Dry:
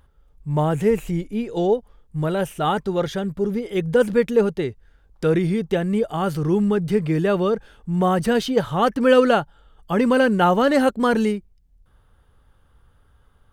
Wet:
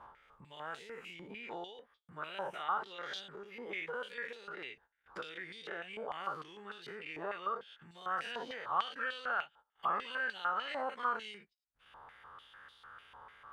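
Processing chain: spectral dilation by 0.12 s; upward compressor, threshold -16 dBFS; gate -34 dBFS, range -24 dB; compressor, threshold -19 dBFS, peak gain reduction 11.5 dB; stepped band-pass 6.7 Hz 940–3900 Hz; gain -3 dB

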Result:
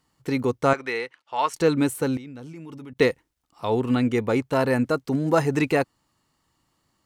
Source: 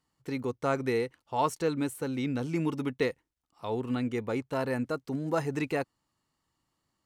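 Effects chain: 0.73–1.54 band-pass 2100 Hz, Q 0.72; 2.17–2.97 level quantiser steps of 24 dB; gain +9 dB

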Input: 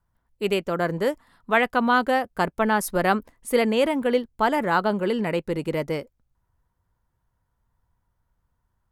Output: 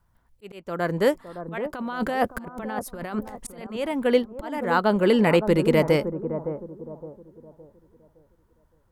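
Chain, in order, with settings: 1.58–3.67 negative-ratio compressor -29 dBFS, ratio -1; auto swell 0.79 s; analogue delay 0.564 s, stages 4096, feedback 34%, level -9.5 dB; gain +6.5 dB

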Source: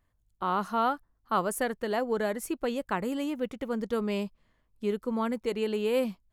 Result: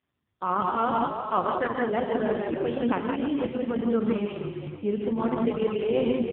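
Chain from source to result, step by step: frequency-shifting echo 0.313 s, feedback 43%, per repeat -53 Hz, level -7 dB; non-linear reverb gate 0.2 s rising, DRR 0 dB; gain +1.5 dB; AMR-NB 4.75 kbps 8000 Hz

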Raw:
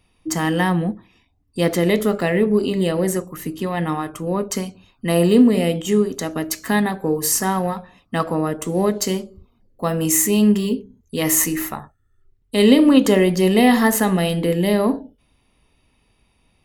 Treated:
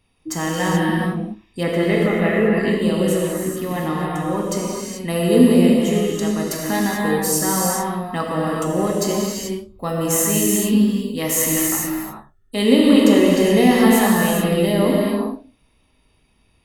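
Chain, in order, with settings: 1.63–2.52 resonant high shelf 3400 Hz -13 dB, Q 1.5; non-linear reverb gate 0.46 s flat, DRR -3.5 dB; gain -4 dB

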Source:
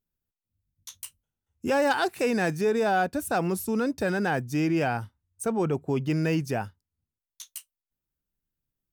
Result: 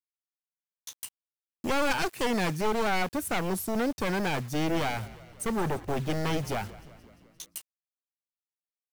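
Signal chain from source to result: one-sided fold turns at -27 dBFS; requantised 8-bit, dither none; 4.51–7.57 frequency-shifting echo 0.174 s, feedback 63%, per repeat -56 Hz, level -18.5 dB

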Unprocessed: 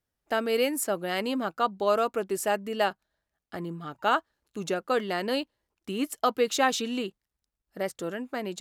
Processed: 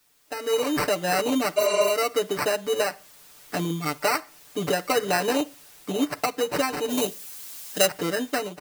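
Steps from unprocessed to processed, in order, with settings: sample-and-hold 13×; HPF 150 Hz 6 dB/oct; reverb RT60 0.30 s, pre-delay 33 ms, DRR 20.5 dB; requantised 10-bit, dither triangular; compressor 6:1, threshold -29 dBFS, peak gain reduction 11.5 dB; comb 6.8 ms, depth 98%; AGC gain up to 16 dB; 1.6–1.87 spectral repair 250–10000 Hz after; 6.89–7.85 high shelf 5000 Hz -> 2700 Hz +11 dB; gain -7.5 dB

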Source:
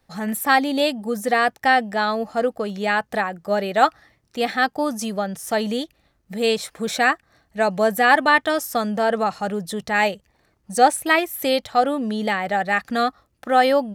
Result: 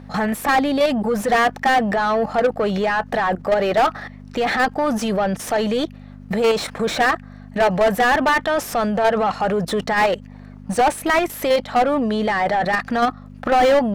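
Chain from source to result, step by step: level quantiser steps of 18 dB; hum 50 Hz, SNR 22 dB; overdrive pedal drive 33 dB, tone 1200 Hz, clips at -7 dBFS

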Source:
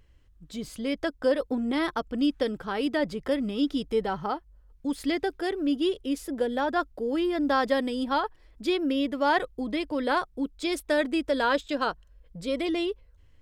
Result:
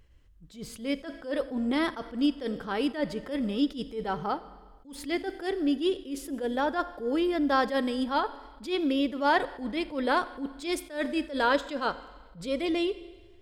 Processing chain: Schroeder reverb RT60 1.4 s, combs from 32 ms, DRR 15 dB; attack slew limiter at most 160 dB/s

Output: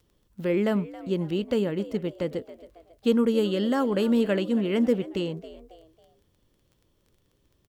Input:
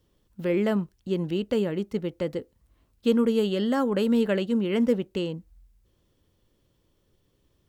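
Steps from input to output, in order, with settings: frequency-shifting echo 0.273 s, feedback 41%, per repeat +79 Hz, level -17 dB; crackle 14/s -48 dBFS

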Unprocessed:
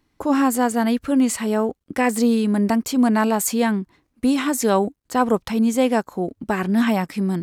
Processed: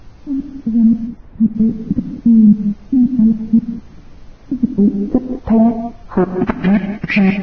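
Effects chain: opening faded in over 2.10 s; bell 760 Hz -8 dB 1.9 oct; compressor 6:1, threshold -27 dBFS, peak gain reduction 11.5 dB; step gate "x.x..xx...x." 113 bpm -60 dB; hard clip -27.5 dBFS, distortion -14 dB; low-pass sweep 190 Hz -> 2300 Hz, 4.59–6.45; added noise brown -57 dBFS; 1.07–1.55 air absorption 420 m; on a send: thinning echo 0.143 s, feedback 51%, high-pass 910 Hz, level -16.5 dB; on the sum: non-linear reverb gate 0.22 s rising, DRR 7.5 dB; maximiser +20.5 dB; gain -1 dB; Vorbis 16 kbps 16000 Hz

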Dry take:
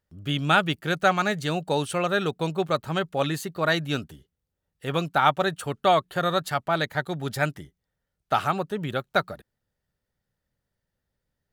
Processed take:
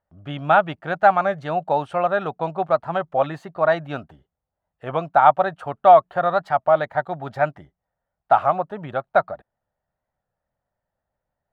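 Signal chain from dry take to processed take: EQ curve 440 Hz 0 dB, 670 Hz +15 dB, 12000 Hz -24 dB; record warp 33 1/3 rpm, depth 100 cents; gain -3.5 dB

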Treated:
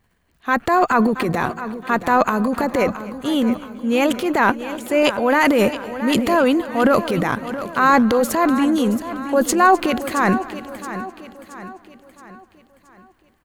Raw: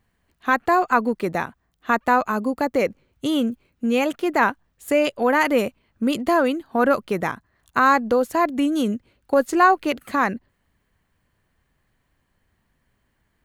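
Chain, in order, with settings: transient shaper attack -4 dB, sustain +11 dB; feedback echo 0.673 s, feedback 46%, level -12.5 dB; warbling echo 0.255 s, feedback 54%, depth 61 cents, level -19 dB; gain +2.5 dB

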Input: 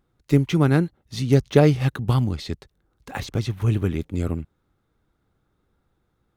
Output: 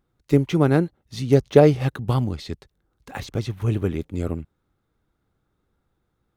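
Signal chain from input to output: dynamic EQ 540 Hz, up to +7 dB, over -31 dBFS, Q 0.81; gain -2.5 dB

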